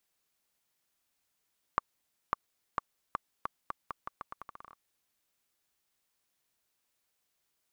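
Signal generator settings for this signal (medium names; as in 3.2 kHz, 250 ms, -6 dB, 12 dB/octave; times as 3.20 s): bouncing ball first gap 0.55 s, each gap 0.82, 1.15 kHz, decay 16 ms -12.5 dBFS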